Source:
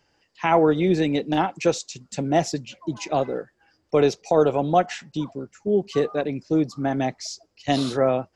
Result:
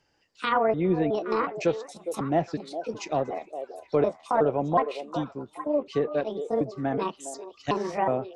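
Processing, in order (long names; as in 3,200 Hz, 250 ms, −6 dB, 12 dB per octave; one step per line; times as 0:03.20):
pitch shifter gated in a rhythm +6.5 semitones, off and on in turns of 367 ms
treble cut that deepens with the level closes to 1,700 Hz, closed at −17 dBFS
echo through a band-pass that steps 410 ms, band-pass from 510 Hz, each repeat 1.4 octaves, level −7 dB
level −4 dB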